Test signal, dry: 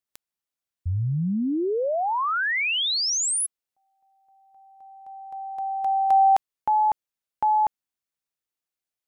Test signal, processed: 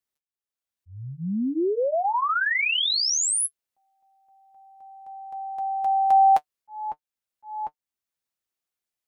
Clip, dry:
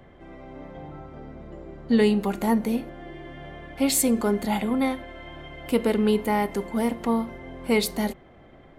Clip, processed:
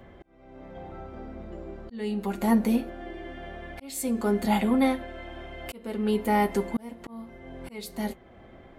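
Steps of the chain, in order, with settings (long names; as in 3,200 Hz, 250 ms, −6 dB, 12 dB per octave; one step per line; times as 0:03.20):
notch comb filter 150 Hz
volume swells 718 ms
level +2 dB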